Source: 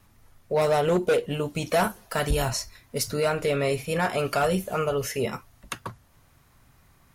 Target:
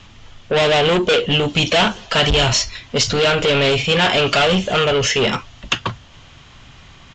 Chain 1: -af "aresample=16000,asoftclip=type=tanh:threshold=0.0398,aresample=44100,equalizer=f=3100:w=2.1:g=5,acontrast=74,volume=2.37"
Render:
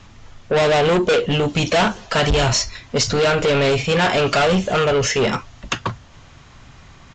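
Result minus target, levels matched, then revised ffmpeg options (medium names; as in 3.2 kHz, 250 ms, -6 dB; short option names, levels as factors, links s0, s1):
4 kHz band -4.5 dB
-af "aresample=16000,asoftclip=type=tanh:threshold=0.0398,aresample=44100,equalizer=f=3100:w=2.1:g=13.5,acontrast=74,volume=2.37"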